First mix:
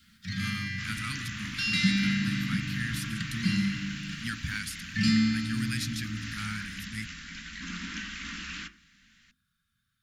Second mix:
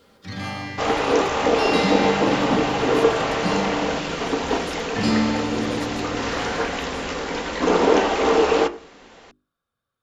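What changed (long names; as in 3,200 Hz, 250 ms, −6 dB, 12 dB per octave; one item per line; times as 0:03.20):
speech −8.5 dB
second sound +9.5 dB
master: remove elliptic band-stop filter 210–1,600 Hz, stop band 70 dB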